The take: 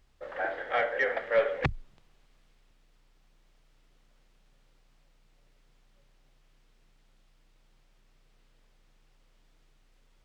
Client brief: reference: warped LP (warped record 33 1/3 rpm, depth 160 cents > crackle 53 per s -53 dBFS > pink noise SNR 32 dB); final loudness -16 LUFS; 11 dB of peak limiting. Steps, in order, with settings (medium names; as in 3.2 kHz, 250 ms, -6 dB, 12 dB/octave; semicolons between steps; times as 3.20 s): peak limiter -26 dBFS; warped record 33 1/3 rpm, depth 160 cents; crackle 53 per s -53 dBFS; pink noise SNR 32 dB; trim +19.5 dB